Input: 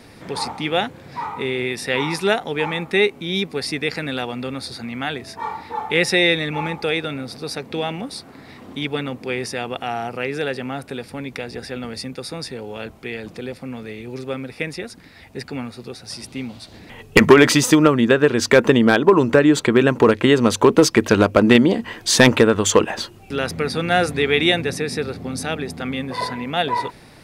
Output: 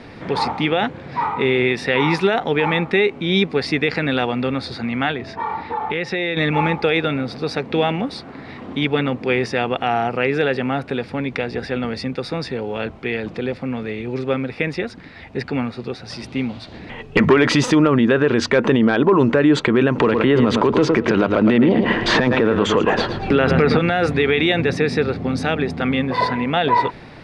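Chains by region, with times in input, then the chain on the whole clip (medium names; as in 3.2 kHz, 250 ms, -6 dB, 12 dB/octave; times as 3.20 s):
5.11–6.37 s: compression 4:1, threshold -26 dBFS + distance through air 57 m
19.98–23.79 s: treble shelf 4.8 kHz -11.5 dB + feedback delay 111 ms, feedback 27%, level -13 dB + three bands compressed up and down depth 100%
whole clip: low-pass 3.3 kHz 12 dB/octave; hum notches 50/100 Hz; peak limiter -13 dBFS; trim +6.5 dB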